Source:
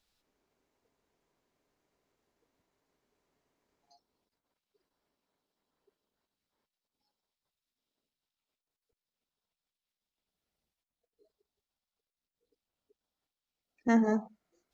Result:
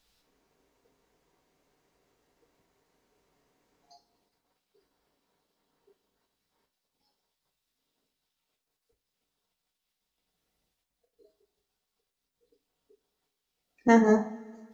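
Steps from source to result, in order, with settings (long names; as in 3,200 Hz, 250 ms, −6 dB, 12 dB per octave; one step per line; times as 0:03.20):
coupled-rooms reverb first 0.32 s, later 1.9 s, from −22 dB, DRR 3 dB
level +6 dB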